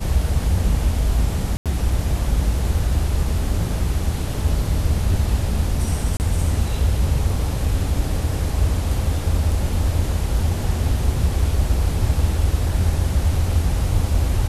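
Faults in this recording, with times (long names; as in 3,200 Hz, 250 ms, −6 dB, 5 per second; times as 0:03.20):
0:01.57–0:01.66: drop-out 87 ms
0:06.17–0:06.20: drop-out 29 ms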